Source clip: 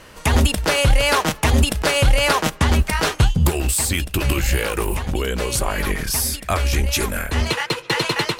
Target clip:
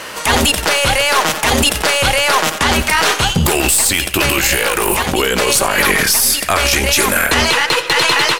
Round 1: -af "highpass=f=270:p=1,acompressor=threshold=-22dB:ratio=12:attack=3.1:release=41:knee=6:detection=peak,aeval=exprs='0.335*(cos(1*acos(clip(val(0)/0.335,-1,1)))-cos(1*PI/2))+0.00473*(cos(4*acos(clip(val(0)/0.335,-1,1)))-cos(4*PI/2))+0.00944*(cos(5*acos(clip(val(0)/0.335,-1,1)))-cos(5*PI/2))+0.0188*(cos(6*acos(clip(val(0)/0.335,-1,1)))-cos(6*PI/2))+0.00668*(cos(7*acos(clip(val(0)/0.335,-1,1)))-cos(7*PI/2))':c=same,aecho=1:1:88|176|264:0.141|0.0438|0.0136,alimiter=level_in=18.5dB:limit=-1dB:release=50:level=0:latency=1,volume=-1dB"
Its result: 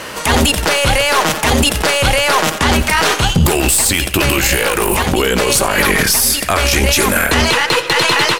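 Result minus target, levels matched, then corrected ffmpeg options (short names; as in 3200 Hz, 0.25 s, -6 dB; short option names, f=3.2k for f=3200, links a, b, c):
250 Hz band +3.0 dB
-af "highpass=f=590:p=1,acompressor=threshold=-22dB:ratio=12:attack=3.1:release=41:knee=6:detection=peak,aeval=exprs='0.335*(cos(1*acos(clip(val(0)/0.335,-1,1)))-cos(1*PI/2))+0.00473*(cos(4*acos(clip(val(0)/0.335,-1,1)))-cos(4*PI/2))+0.00944*(cos(5*acos(clip(val(0)/0.335,-1,1)))-cos(5*PI/2))+0.0188*(cos(6*acos(clip(val(0)/0.335,-1,1)))-cos(6*PI/2))+0.00668*(cos(7*acos(clip(val(0)/0.335,-1,1)))-cos(7*PI/2))':c=same,aecho=1:1:88|176|264:0.141|0.0438|0.0136,alimiter=level_in=18.5dB:limit=-1dB:release=50:level=0:latency=1,volume=-1dB"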